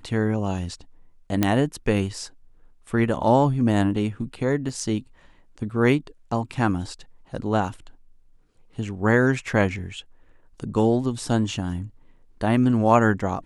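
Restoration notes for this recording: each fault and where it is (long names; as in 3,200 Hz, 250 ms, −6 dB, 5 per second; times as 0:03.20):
0:01.43: click −6 dBFS
0:04.69: drop-out 2.4 ms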